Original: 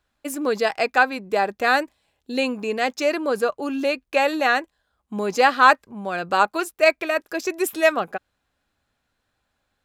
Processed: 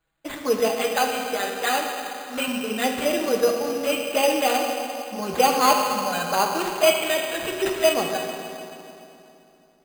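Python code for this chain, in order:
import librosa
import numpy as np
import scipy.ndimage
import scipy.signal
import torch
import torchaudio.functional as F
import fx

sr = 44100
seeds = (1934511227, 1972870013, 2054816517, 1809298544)

y = fx.low_shelf(x, sr, hz=440.0, db=-10.0, at=(0.72, 2.48))
y = fx.env_flanger(y, sr, rest_ms=6.2, full_db=-17.0)
y = fx.rev_fdn(y, sr, rt60_s=2.9, lf_ratio=1.2, hf_ratio=0.85, size_ms=38.0, drr_db=0.0)
y = np.repeat(y[::8], 8)[:len(y)]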